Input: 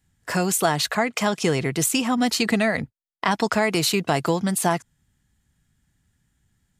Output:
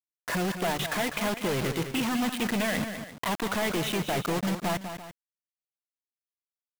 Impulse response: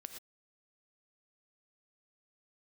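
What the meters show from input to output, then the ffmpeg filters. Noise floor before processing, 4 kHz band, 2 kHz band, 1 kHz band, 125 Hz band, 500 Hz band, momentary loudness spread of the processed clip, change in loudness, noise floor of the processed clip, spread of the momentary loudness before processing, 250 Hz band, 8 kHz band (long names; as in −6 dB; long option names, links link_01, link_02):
−71 dBFS, −6.5 dB, −5.5 dB, −7.0 dB, −5.5 dB, −7.0 dB, 6 LU, −7.0 dB, below −85 dBFS, 5 LU, −6.0 dB, −11.0 dB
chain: -filter_complex "[0:a]bandreject=frequency=50:width_type=h:width=6,bandreject=frequency=100:width_type=h:width=6,bandreject=frequency=150:width_type=h:width=6,afftfilt=real='re*gte(hypot(re,im),0.0224)':imag='im*gte(hypot(re,im),0.0224)':win_size=1024:overlap=0.75,acompressor=mode=upward:threshold=-34dB:ratio=2.5,aresample=8000,asoftclip=type=hard:threshold=-21.5dB,aresample=44100,acrusher=bits=4:mix=0:aa=0.000001,asplit=2[link_01][link_02];[link_02]aecho=0:1:199|340:0.355|0.178[link_03];[link_01][link_03]amix=inputs=2:normalize=0,volume=-2.5dB"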